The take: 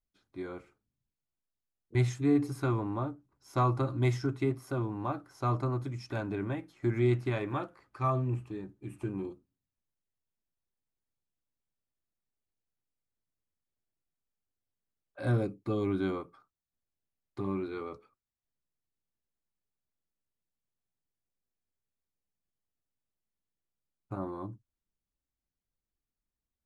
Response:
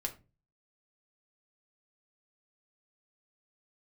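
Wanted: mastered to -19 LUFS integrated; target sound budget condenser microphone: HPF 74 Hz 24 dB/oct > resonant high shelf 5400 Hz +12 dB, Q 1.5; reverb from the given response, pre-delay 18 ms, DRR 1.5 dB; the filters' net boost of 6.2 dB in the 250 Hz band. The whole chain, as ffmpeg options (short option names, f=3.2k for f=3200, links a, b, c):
-filter_complex "[0:a]equalizer=f=250:t=o:g=8,asplit=2[a][b];[1:a]atrim=start_sample=2205,adelay=18[c];[b][c]afir=irnorm=-1:irlink=0,volume=-2.5dB[d];[a][d]amix=inputs=2:normalize=0,highpass=f=74:w=0.5412,highpass=f=74:w=1.3066,highshelf=f=5.4k:t=q:w=1.5:g=12,volume=7dB"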